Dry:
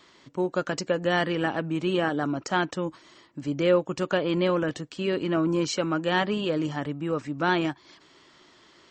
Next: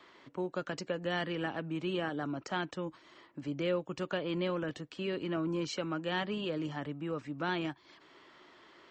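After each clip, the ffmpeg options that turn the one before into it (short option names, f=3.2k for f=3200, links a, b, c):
-filter_complex "[0:a]bass=f=250:g=-8,treble=f=4k:g=-14,acrossover=split=210|3000[a][b][c];[b]acompressor=threshold=-52dB:ratio=1.5[d];[a][d][c]amix=inputs=3:normalize=0"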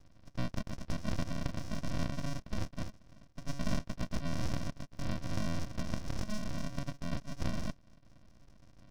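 -af "aresample=11025,acrusher=samples=26:mix=1:aa=0.000001,aresample=44100,aeval=exprs='abs(val(0))':c=same,volume=2.5dB"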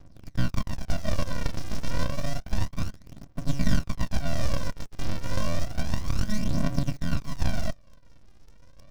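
-filter_complex "[0:a]aphaser=in_gain=1:out_gain=1:delay=2.5:decay=0.58:speed=0.3:type=triangular,asplit=2[a][b];[b]acrusher=bits=6:mix=0:aa=0.000001,volume=-8.5dB[c];[a][c]amix=inputs=2:normalize=0,volume=3dB"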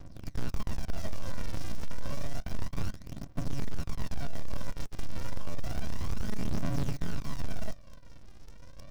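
-af "asoftclip=type=tanh:threshold=-24.5dB,volume=4dB"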